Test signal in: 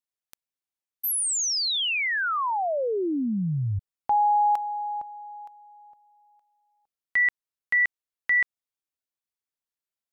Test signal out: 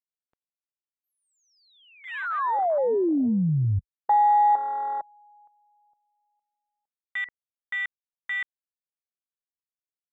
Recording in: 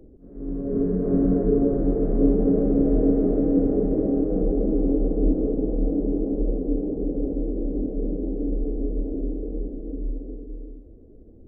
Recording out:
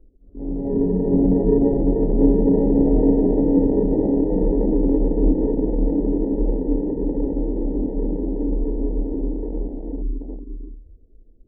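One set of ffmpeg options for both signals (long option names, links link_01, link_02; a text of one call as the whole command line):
ffmpeg -i in.wav -af "lowpass=1100,afwtdn=0.0355,volume=3.5dB" out.wav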